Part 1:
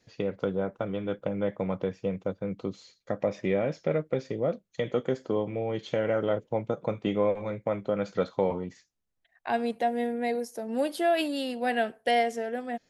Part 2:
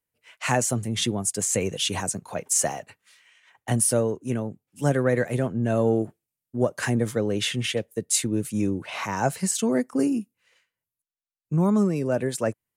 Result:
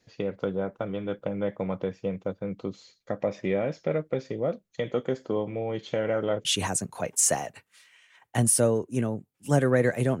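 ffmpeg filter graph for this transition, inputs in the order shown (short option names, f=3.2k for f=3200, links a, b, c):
-filter_complex "[0:a]apad=whole_dur=10.2,atrim=end=10.2,atrim=end=6.452[a];[1:a]atrim=start=1.778:end=5.53[b];[a][b]acrossfade=d=0.004:c1=hsin:c2=hsin"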